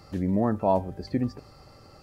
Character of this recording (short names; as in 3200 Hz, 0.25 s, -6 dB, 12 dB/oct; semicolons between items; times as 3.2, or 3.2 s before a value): noise floor -52 dBFS; spectral tilt -3.0 dB/oct